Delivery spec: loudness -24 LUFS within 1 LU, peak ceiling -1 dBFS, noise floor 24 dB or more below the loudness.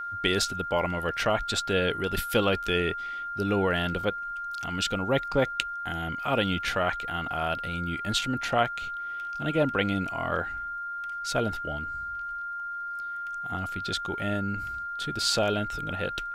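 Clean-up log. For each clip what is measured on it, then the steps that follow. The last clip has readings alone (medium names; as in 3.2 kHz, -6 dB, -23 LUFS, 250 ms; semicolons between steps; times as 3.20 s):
tick rate 15 per s; steady tone 1.4 kHz; tone level -32 dBFS; loudness -28.5 LUFS; peak level -7.0 dBFS; loudness target -24.0 LUFS
-> de-click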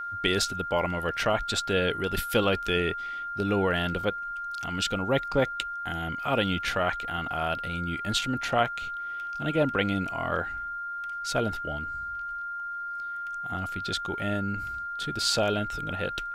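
tick rate 0.12 per s; steady tone 1.4 kHz; tone level -32 dBFS
-> band-stop 1.4 kHz, Q 30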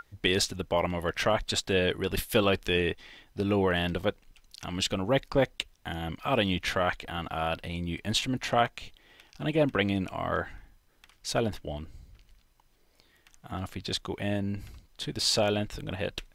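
steady tone not found; loudness -29.5 LUFS; peak level -9.0 dBFS; loudness target -24.0 LUFS
-> trim +5.5 dB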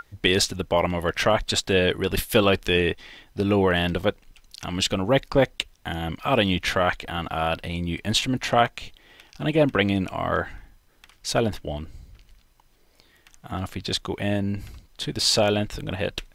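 loudness -24.0 LUFS; peak level -3.5 dBFS; noise floor -59 dBFS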